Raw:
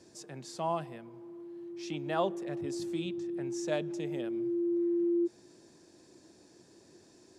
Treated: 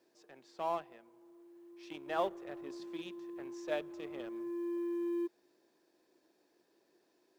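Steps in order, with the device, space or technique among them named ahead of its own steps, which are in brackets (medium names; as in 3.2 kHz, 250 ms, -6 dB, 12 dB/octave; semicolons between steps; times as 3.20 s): phone line with mismatched companding (band-pass 380–3500 Hz; companding laws mixed up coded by A); trim -1 dB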